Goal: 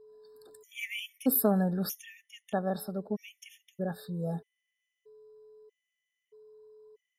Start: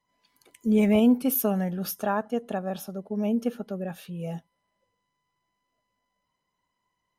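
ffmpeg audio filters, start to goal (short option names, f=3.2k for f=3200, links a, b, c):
-af "aeval=exprs='val(0)+0.00251*sin(2*PI*430*n/s)':c=same,afftfilt=real='re*gt(sin(2*PI*0.79*pts/sr)*(1-2*mod(floor(b*sr/1024/1800),2)),0)':imag='im*gt(sin(2*PI*0.79*pts/sr)*(1-2*mod(floor(b*sr/1024/1800),2)),0)':win_size=1024:overlap=0.75"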